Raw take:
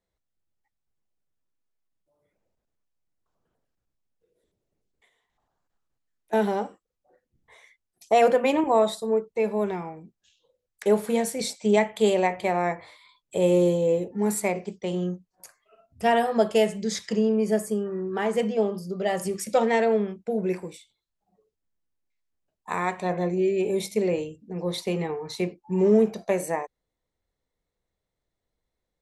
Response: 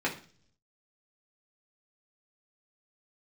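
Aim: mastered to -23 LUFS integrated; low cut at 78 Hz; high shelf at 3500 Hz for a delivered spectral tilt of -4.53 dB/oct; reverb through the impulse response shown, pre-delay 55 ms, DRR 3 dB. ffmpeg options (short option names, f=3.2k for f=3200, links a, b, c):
-filter_complex "[0:a]highpass=78,highshelf=f=3.5k:g=7.5,asplit=2[a][b];[1:a]atrim=start_sample=2205,adelay=55[c];[b][c]afir=irnorm=-1:irlink=0,volume=-12dB[d];[a][d]amix=inputs=2:normalize=0"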